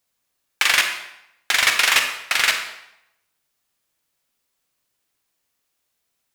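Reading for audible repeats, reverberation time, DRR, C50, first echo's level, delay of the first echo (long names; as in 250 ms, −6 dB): no echo audible, 0.80 s, 4.0 dB, 6.5 dB, no echo audible, no echo audible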